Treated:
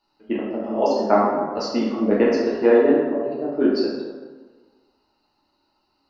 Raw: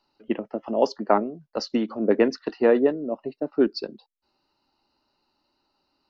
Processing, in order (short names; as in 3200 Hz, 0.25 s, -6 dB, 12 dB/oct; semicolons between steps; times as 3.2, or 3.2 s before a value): plate-style reverb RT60 1.4 s, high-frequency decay 0.55×, DRR -6.5 dB; gain -3.5 dB